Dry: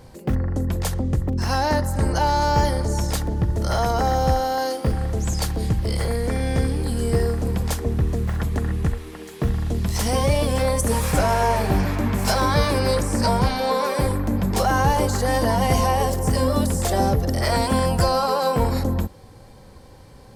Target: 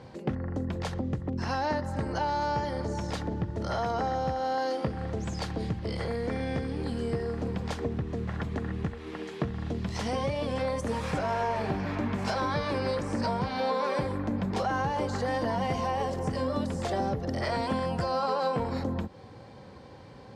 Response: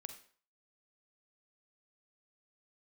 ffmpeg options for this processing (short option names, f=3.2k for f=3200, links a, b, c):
-af "acompressor=threshold=-25dB:ratio=6,highpass=110,lowpass=4.1k"